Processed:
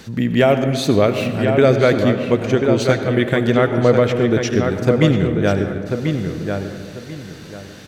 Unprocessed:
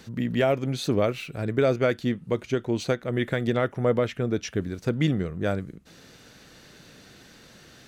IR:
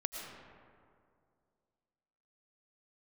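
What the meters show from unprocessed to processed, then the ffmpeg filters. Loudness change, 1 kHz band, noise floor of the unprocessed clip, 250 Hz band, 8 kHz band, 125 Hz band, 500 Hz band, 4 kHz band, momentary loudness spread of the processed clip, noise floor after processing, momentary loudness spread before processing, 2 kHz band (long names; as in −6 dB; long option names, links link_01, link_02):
+9.5 dB, +10.0 dB, −52 dBFS, +10.5 dB, +9.0 dB, +10.0 dB, +10.0 dB, +9.5 dB, 17 LU, −36 dBFS, 6 LU, +10.0 dB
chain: -filter_complex "[0:a]asplit=2[link_01][link_02];[link_02]adelay=1041,lowpass=frequency=3200:poles=1,volume=-5.5dB,asplit=2[link_03][link_04];[link_04]adelay=1041,lowpass=frequency=3200:poles=1,volume=0.25,asplit=2[link_05][link_06];[link_06]adelay=1041,lowpass=frequency=3200:poles=1,volume=0.25[link_07];[link_01][link_03][link_05][link_07]amix=inputs=4:normalize=0,asplit=2[link_08][link_09];[1:a]atrim=start_sample=2205,asetrate=57330,aresample=44100[link_10];[link_09][link_10]afir=irnorm=-1:irlink=0,volume=0dB[link_11];[link_08][link_11]amix=inputs=2:normalize=0,volume=4dB"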